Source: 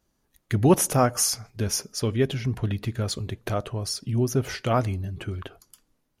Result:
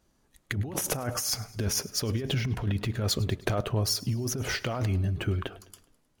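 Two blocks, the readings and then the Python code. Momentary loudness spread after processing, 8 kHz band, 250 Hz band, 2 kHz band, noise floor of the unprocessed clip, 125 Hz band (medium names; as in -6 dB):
3 LU, -4.0 dB, -7.0 dB, +0.5 dB, -73 dBFS, -2.5 dB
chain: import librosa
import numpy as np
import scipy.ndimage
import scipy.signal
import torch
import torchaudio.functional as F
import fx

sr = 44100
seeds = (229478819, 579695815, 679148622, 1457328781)

y = fx.over_compress(x, sr, threshold_db=-28.0, ratio=-1.0)
y = fx.echo_feedback(y, sr, ms=104, feedback_pct=55, wet_db=-20.5)
y = np.interp(np.arange(len(y)), np.arange(len(y))[::2], y[::2])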